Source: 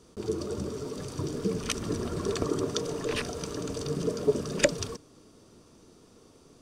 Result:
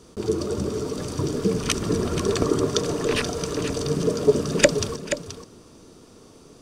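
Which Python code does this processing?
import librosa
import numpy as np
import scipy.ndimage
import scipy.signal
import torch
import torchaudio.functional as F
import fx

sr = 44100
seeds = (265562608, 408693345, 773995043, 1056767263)

y = x + 10.0 ** (-10.0 / 20.0) * np.pad(x, (int(479 * sr / 1000.0), 0))[:len(x)]
y = y * librosa.db_to_amplitude(7.0)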